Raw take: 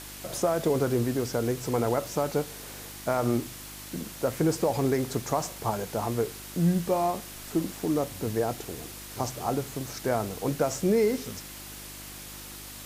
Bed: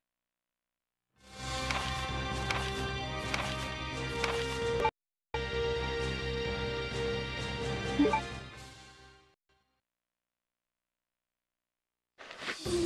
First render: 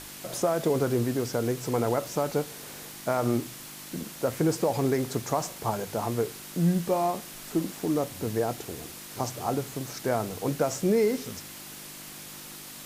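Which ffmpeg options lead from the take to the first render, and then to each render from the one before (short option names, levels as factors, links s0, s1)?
-af "bandreject=f=50:t=h:w=4,bandreject=f=100:t=h:w=4"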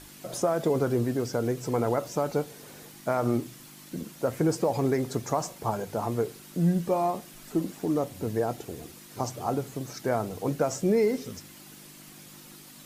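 -af "afftdn=nr=8:nf=-43"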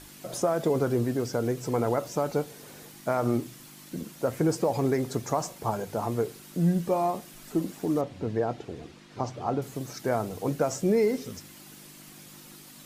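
-filter_complex "[0:a]asettb=1/sr,asplit=3[s0][s1][s2];[s0]atrim=end=8.014[s3];[s1]atrim=start=8.01:end=9.62,asetpts=PTS-STARTPTS,afade=t=in:d=0.004:c=qsin,afade=t=out:st=1.606:d=0.004:c=qsin,lowpass=4000[s4];[s2]atrim=start=9.616[s5];[s3][s4]acrossfade=d=0.004:c1=hsin:c2=qsin[s6];[s6][s5]acrossfade=d=0.004:c1=qsin:c2=hsin"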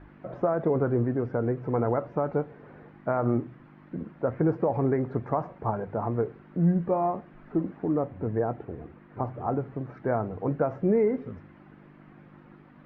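-af "lowpass=f=1800:w=0.5412,lowpass=f=1800:w=1.3066,equalizer=f=65:t=o:w=1.8:g=4.5"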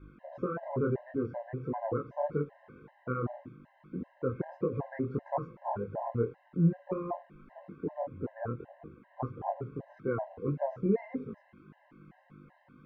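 -af "flanger=delay=19:depth=7:speed=1.7,afftfilt=real='re*gt(sin(2*PI*2.6*pts/sr)*(1-2*mod(floor(b*sr/1024/530),2)),0)':imag='im*gt(sin(2*PI*2.6*pts/sr)*(1-2*mod(floor(b*sr/1024/530),2)),0)':win_size=1024:overlap=0.75"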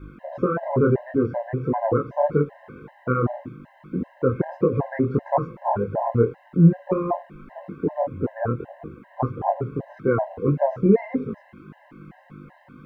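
-af "volume=3.76"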